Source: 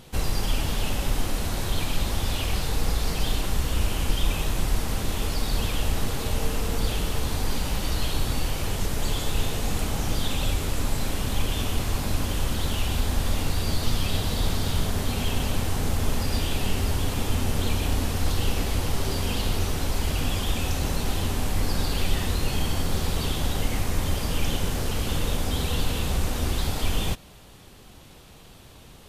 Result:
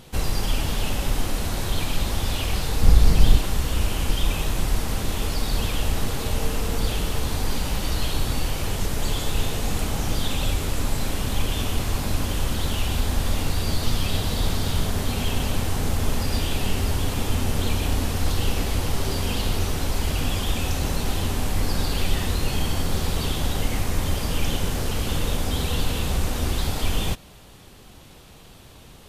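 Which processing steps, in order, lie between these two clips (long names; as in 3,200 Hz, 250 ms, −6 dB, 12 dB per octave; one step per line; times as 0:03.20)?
0:02.83–0:03.38: low-shelf EQ 260 Hz +10.5 dB
level +1.5 dB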